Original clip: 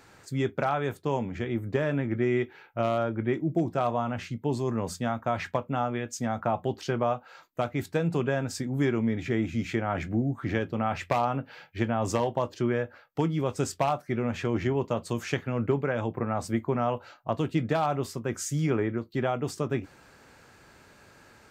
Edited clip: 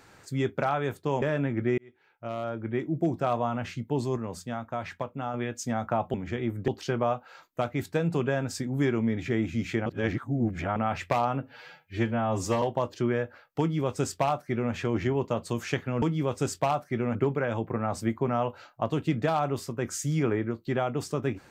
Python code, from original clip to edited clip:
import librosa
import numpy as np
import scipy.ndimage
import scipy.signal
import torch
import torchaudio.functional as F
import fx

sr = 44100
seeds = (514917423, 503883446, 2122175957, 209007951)

y = fx.edit(x, sr, fx.move(start_s=1.22, length_s=0.54, to_s=6.68),
    fx.fade_in_span(start_s=2.32, length_s=1.3),
    fx.clip_gain(start_s=4.71, length_s=1.17, db=-5.0),
    fx.reverse_span(start_s=9.86, length_s=0.9),
    fx.stretch_span(start_s=11.42, length_s=0.8, factor=1.5),
    fx.duplicate(start_s=13.2, length_s=1.13, to_s=15.62), tone=tone)